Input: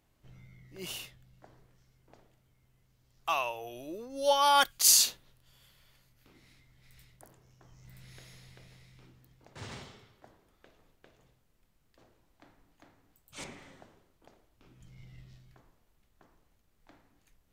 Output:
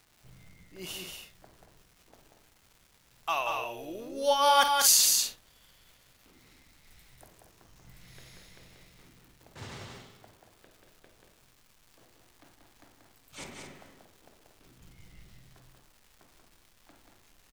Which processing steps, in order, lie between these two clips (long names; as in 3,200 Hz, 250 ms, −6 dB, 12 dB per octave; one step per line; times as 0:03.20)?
surface crackle 360 per second −49 dBFS
multi-tap delay 51/185/233 ms −13/−4.5/−10 dB